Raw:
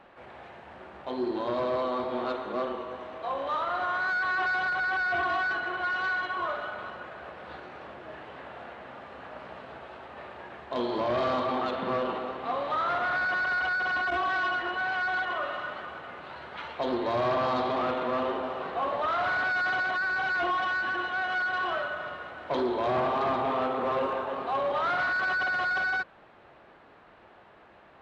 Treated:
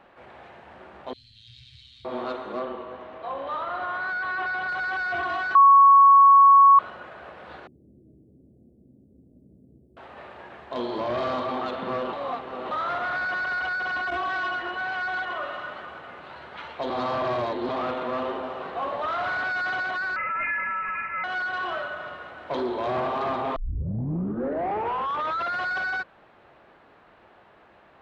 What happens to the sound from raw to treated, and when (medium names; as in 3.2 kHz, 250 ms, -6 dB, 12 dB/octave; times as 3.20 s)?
1.13–2.05 s: inverse Chebyshev band-stop 340–1000 Hz, stop band 70 dB
2.59–4.69 s: distance through air 140 m
5.55–6.79 s: bleep 1.11 kHz -10 dBFS
7.67–9.97 s: inverse Chebyshev band-stop 1.2–3.4 kHz, stop band 80 dB
12.13–12.71 s: reverse
16.90–17.69 s: reverse
20.16–21.24 s: frequency inversion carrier 2.8 kHz
23.56 s: tape start 2.03 s